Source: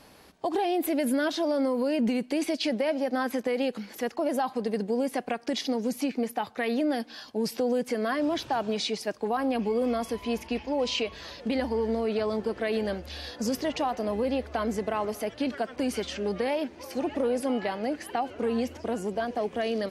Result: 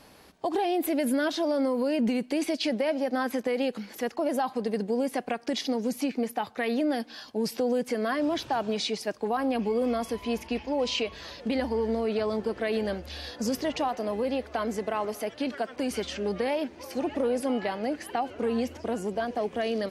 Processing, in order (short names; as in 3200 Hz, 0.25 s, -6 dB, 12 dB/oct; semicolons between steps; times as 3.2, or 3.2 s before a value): 13.88–15.91 low shelf 130 Hz -9 dB